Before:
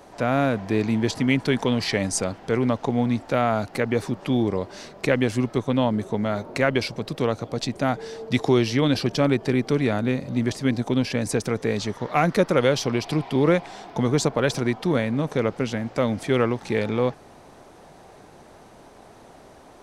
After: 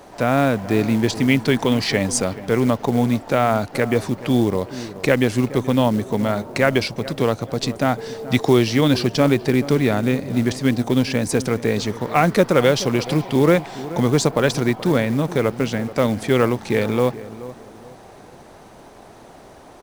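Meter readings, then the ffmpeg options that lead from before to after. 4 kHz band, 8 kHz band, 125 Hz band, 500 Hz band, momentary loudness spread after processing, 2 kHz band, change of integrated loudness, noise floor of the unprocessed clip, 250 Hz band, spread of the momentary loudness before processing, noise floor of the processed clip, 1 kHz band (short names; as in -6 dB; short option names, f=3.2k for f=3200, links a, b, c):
+4.0 dB, +4.5 dB, +4.0 dB, +4.0 dB, 6 LU, +4.0 dB, +4.0 dB, -48 dBFS, +4.0 dB, 6 LU, -44 dBFS, +4.0 dB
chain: -filter_complex "[0:a]asplit=2[a][b];[b]adelay=428,lowpass=f=1.3k:p=1,volume=-15dB,asplit=2[c][d];[d]adelay=428,lowpass=f=1.3k:p=1,volume=0.35,asplit=2[e][f];[f]adelay=428,lowpass=f=1.3k:p=1,volume=0.35[g];[a][c][e][g]amix=inputs=4:normalize=0,acrusher=bits=6:mode=log:mix=0:aa=0.000001,volume=4dB"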